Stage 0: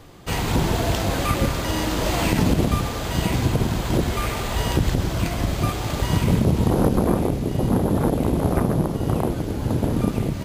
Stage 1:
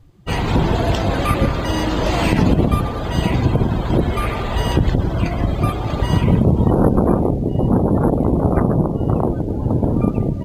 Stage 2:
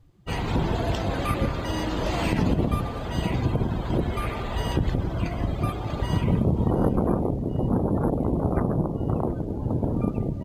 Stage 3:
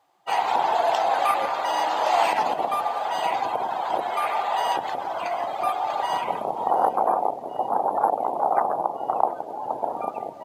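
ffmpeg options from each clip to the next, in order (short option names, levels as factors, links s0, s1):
-af "afftdn=nr=20:nf=-33,volume=1.68"
-af "aecho=1:1:717:0.106,volume=0.398"
-af "highpass=f=790:t=q:w=4.9,volume=1.33"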